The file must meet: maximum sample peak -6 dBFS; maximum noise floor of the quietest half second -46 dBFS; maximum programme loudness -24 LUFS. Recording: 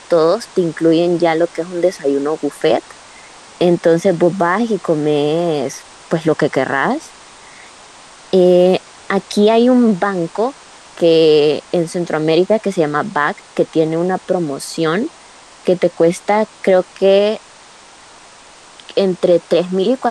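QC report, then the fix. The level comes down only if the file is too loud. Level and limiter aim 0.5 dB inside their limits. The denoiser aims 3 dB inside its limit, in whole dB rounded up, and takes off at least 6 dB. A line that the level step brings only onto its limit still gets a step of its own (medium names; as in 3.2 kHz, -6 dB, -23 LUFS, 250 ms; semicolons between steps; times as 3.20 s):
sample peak -2.0 dBFS: fail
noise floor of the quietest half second -41 dBFS: fail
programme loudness -15.5 LUFS: fail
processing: trim -9 dB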